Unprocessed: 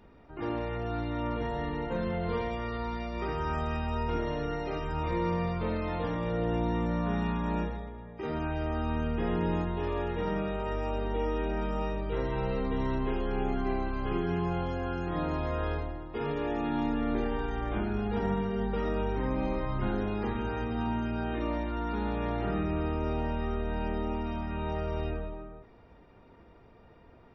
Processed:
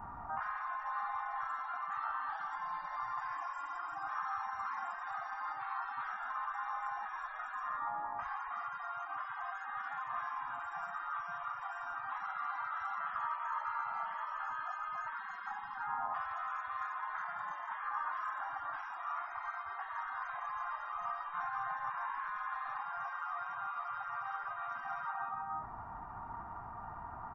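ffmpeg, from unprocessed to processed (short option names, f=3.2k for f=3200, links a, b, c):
-filter_complex "[0:a]asplit=3[a][b][c];[a]atrim=end=21.912[d];[b]atrim=start=21.908:end=22.772,asetpts=PTS-STARTPTS,areverse[e];[c]atrim=start=22.768[f];[d][e]acrossfade=d=0.004:c1=hsin:c2=hsin[g];[g][f]acrossfade=d=0.004:c1=hsin:c2=hsin,afftfilt=real='re*lt(hypot(re,im),0.0158)':imag='im*lt(hypot(re,im),0.0158)':win_size=1024:overlap=0.75,firequalizer=gain_entry='entry(110,0);entry(510,-17);entry(760,12);entry(1200,14);entry(2400,-15);entry(3900,-21);entry(7900,-5)':delay=0.05:min_phase=1,volume=6.5dB"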